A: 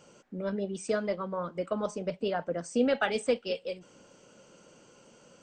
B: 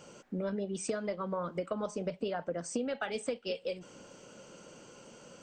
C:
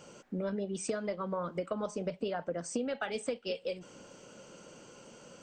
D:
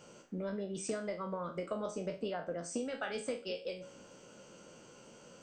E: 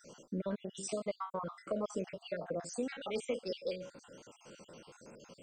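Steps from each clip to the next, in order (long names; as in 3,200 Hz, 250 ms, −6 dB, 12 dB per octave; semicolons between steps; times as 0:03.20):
downward compressor 12 to 1, threshold −35 dBFS, peak gain reduction 15 dB; level +4 dB
no processing that can be heard
peak hold with a decay on every bin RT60 0.33 s; hum removal 277.9 Hz, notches 37; level −4 dB
time-frequency cells dropped at random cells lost 51%; level +3 dB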